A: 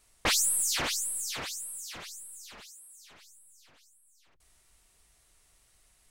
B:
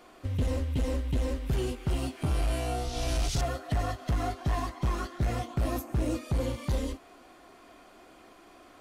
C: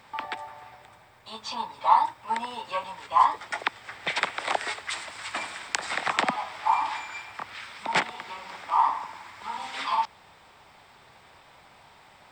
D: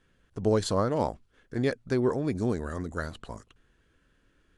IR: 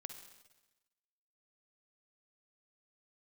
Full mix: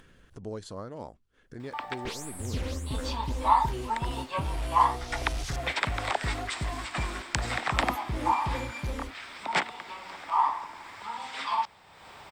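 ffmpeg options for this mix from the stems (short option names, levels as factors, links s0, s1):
-filter_complex "[0:a]lowpass=f=1700:p=1,equalizer=f=950:w=0.62:g=-13.5,adelay=1800,volume=0.708[s0];[1:a]adelay=2150,volume=0.596[s1];[2:a]adelay=1600,volume=0.75[s2];[3:a]volume=0.211[s3];[s0][s1][s2][s3]amix=inputs=4:normalize=0,acompressor=mode=upward:threshold=0.0126:ratio=2.5"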